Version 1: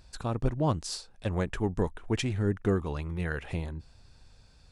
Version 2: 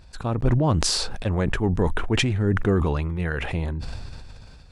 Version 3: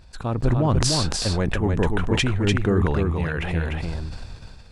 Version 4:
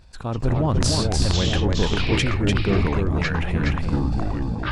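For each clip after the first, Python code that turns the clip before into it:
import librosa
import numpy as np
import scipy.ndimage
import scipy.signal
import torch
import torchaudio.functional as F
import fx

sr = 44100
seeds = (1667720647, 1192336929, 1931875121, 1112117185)

y1 = fx.bass_treble(x, sr, bass_db=1, treble_db=-6)
y1 = fx.sustainer(y1, sr, db_per_s=22.0)
y1 = F.gain(torch.from_numpy(y1), 4.5).numpy()
y2 = y1 + 10.0 ** (-4.0 / 20.0) * np.pad(y1, (int(296 * sr / 1000.0), 0))[:len(y1)]
y3 = fx.echo_pitch(y2, sr, ms=141, semitones=-6, count=2, db_per_echo=-3.0)
y3 = F.gain(torch.from_numpy(y3), -1.5).numpy()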